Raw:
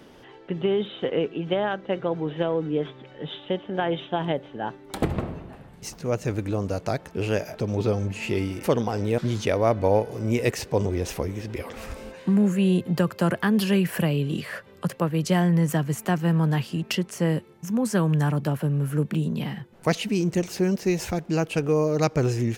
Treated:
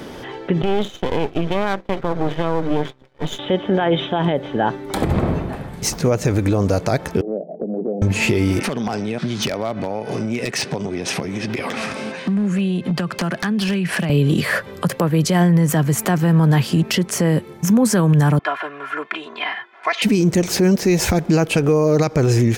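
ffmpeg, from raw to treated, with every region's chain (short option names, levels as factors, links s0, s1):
-filter_complex "[0:a]asettb=1/sr,asplit=3[s0][s1][s2];[s0]atrim=end=0.624[s3];[s1]atrim=start=0.62:end=3.39,asetpts=PTS-STARTPTS,afade=t=in:d=0.004:c=qsin,afade=t=out:st=2.766:d=0.004:c=qsin,agate=range=0.0224:threshold=0.0224:ratio=3:release=100:detection=peak,aeval=exprs='max(val(0),0)':c=same[s4];[s2]atrim=start=3.386[s5];[s3][s4]acrossfade=d=0.004:c1=hsin:c2=qsin[s6];[s6][s5]acrossfade=d=0.004:c1=qsin:c2=hsin,asettb=1/sr,asplit=3[s7][s8][s9];[s7]atrim=end=7.214[s10];[s8]atrim=start=7.21:end=8.02,asetpts=PTS-STARTPTS,afade=t=in:d=0.004:c=qsin,afade=t=out:st=0.806:d=0.004:c=qsin,agate=range=0.398:threshold=0.0282:ratio=16:release=100:detection=peak,asuperpass=centerf=350:order=20:qfactor=0.59,acompressor=threshold=0.00794:ratio=2.5:attack=3.2:release=140:knee=1:detection=peak[s11];[s9]atrim=start=8.016[s12];[s10][s11]acrossfade=d=0.004:c1=hsin:c2=qsin[s13];[s13][s12]acrossfade=d=0.004:c1=qsin:c2=hsin,asettb=1/sr,asplit=3[s14][s15][s16];[s14]atrim=end=8.604[s17];[s15]atrim=start=8.6:end=14.1,asetpts=PTS-STARTPTS,afade=t=in:d=0.004:c=qsin,afade=t=out:st=5.496:d=0.004:c=qsin,acompressor=threshold=0.0316:ratio=16:attack=3.2:release=140:knee=1:detection=peak,highpass=f=140:w=0.5412,highpass=f=140:w=1.3066,equalizer=f=320:t=q:w=4:g=-4,equalizer=f=490:t=q:w=4:g=-8,equalizer=f=970:t=q:w=4:g=-3,equalizer=f=2700:t=q:w=4:g=4,equalizer=f=7200:t=q:w=4:g=-7,lowpass=f=8900:w=0.5412,lowpass=f=8900:w=1.3066,aeval=exprs='0.0355*(abs(mod(val(0)/0.0355+3,4)-2)-1)':c=same[s18];[s16]atrim=start=14.096[s19];[s17][s18]acrossfade=d=0.004:c1=hsin:c2=qsin[s20];[s20][s19]acrossfade=d=0.004:c1=qsin:c2=hsin,asettb=1/sr,asplit=3[s21][s22][s23];[s21]atrim=end=18.394[s24];[s22]atrim=start=18.39:end=20.02,asetpts=PTS-STARTPTS,afade=t=in:d=0.004:c=qsin,afade=t=out:st=1.626:d=0.004:c=qsin,asuperpass=centerf=1600:order=4:qfactor=0.82,aecho=1:1:2.9:0.95,atrim=end_sample=71883[s25];[s23]atrim=start=20.016[s26];[s24][s25]acrossfade=d=0.004:c1=hsin:c2=qsin[s27];[s27][s26]acrossfade=d=0.004:c1=qsin:c2=hsin,acompressor=threshold=0.0501:ratio=4,bandreject=f=2800:w=13,alimiter=level_in=13.3:limit=0.891:release=50:level=0:latency=1,volume=0.447"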